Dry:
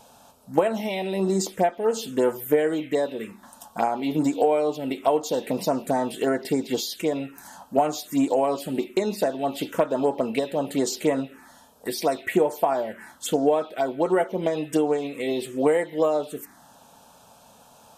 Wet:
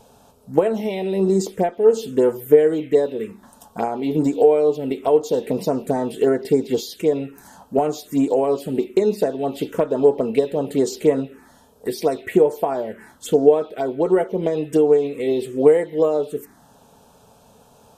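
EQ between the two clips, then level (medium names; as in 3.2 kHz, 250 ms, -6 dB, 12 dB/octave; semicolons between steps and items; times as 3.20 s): bass shelf 240 Hz +11 dB; peaking EQ 430 Hz +10.5 dB 0.38 oct; -2.5 dB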